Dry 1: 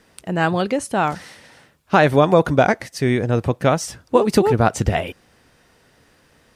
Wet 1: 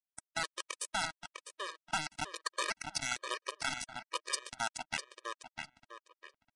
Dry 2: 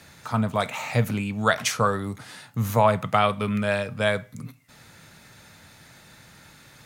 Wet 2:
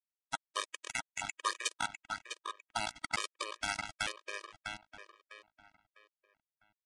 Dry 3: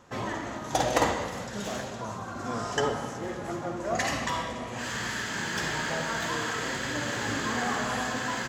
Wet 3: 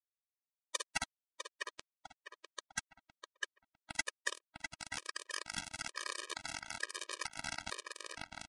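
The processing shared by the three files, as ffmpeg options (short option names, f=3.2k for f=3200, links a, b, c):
-filter_complex "[0:a]afftfilt=real='re*gte(hypot(re,im),0.0282)':imag='im*gte(hypot(re,im),0.0282)':win_size=1024:overlap=0.75,alimiter=limit=-10dB:level=0:latency=1:release=216,dynaudnorm=f=110:g=17:m=4dB,highpass=f=1.1k:w=0.5412,highpass=f=1.1k:w=1.3066,acompressor=threshold=-33dB:ratio=8,acrusher=bits=9:mode=log:mix=0:aa=0.000001,asoftclip=type=tanh:threshold=-26dB,acrusher=bits=4:mix=0:aa=0.000001,asplit=2[a][b];[b]adelay=652,lowpass=f=3.4k:p=1,volume=-4.5dB,asplit=2[c][d];[d]adelay=652,lowpass=f=3.4k:p=1,volume=0.35,asplit=2[e][f];[f]adelay=652,lowpass=f=3.4k:p=1,volume=0.35,asplit=2[g][h];[h]adelay=652,lowpass=f=3.4k:p=1,volume=0.35[i];[a][c][e][g][i]amix=inputs=5:normalize=0,aresample=22050,aresample=44100,afftfilt=real='re*gt(sin(2*PI*1.1*pts/sr)*(1-2*mod(floor(b*sr/1024/320),2)),0)':imag='im*gt(sin(2*PI*1.1*pts/sr)*(1-2*mod(floor(b*sr/1024/320),2)),0)':win_size=1024:overlap=0.75,volume=6dB"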